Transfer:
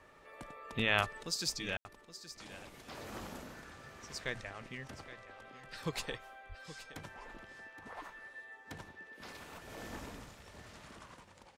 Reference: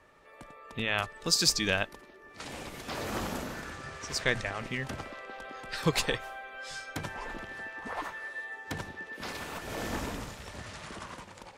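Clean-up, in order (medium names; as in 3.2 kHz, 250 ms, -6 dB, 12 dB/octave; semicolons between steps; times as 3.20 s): 6.48–6.60 s: high-pass 140 Hz 24 dB/octave; room tone fill 1.77–1.85 s; inverse comb 821 ms -14 dB; 1.23 s: gain correction +11 dB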